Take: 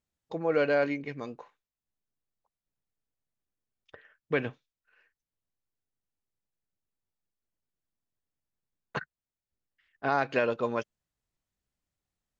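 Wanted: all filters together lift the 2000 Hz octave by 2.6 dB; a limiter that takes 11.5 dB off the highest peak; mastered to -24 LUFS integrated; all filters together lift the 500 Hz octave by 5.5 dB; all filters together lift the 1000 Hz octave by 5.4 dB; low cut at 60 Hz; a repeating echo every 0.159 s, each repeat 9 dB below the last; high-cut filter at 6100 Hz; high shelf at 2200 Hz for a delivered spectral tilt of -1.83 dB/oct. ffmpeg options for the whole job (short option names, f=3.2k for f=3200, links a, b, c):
-af "highpass=60,lowpass=6.1k,equalizer=f=500:t=o:g=5,equalizer=f=1k:t=o:g=6,equalizer=f=2k:t=o:g=5,highshelf=f=2.2k:g=-8.5,alimiter=limit=-21dB:level=0:latency=1,aecho=1:1:159|318|477|636:0.355|0.124|0.0435|0.0152,volume=9dB"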